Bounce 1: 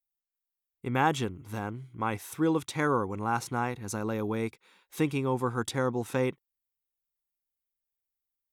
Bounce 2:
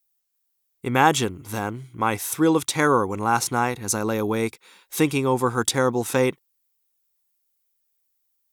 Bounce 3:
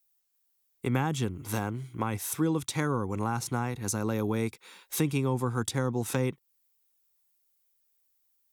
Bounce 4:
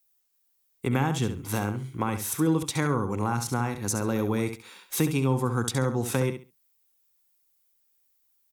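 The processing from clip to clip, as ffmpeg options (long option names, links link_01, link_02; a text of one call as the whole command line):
ffmpeg -i in.wav -af "bass=frequency=250:gain=-4,treble=frequency=4000:gain=7,volume=8.5dB" out.wav
ffmpeg -i in.wav -filter_complex "[0:a]acrossover=split=210[link_01][link_02];[link_02]acompressor=threshold=-30dB:ratio=6[link_03];[link_01][link_03]amix=inputs=2:normalize=0" out.wav
ffmpeg -i in.wav -af "aecho=1:1:68|136|204:0.355|0.0745|0.0156,volume=2.5dB" out.wav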